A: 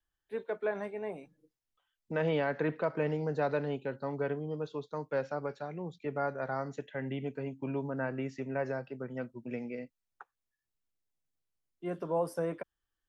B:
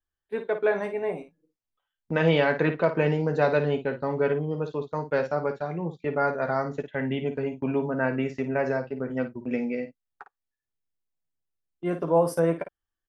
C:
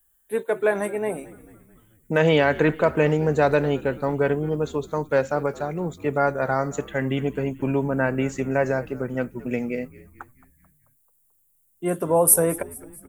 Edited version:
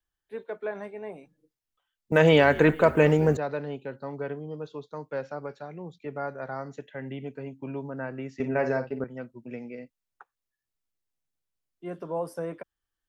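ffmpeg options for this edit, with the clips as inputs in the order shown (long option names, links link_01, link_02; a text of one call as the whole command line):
ffmpeg -i take0.wav -i take1.wav -i take2.wav -filter_complex "[0:a]asplit=3[link_01][link_02][link_03];[link_01]atrim=end=2.122[link_04];[2:a]atrim=start=2.118:end=3.372[link_05];[link_02]atrim=start=3.368:end=8.402[link_06];[1:a]atrim=start=8.398:end=9.042[link_07];[link_03]atrim=start=9.038[link_08];[link_04][link_05]acrossfade=duration=0.004:curve1=hsin:curve2=hsin[link_09];[link_09][link_06]acrossfade=duration=0.004:curve1=hsin:curve2=hsin[link_10];[link_10][link_07]acrossfade=duration=0.004:curve1=hsin:curve2=hsin[link_11];[link_11][link_08]acrossfade=duration=0.004:curve1=hsin:curve2=hsin" out.wav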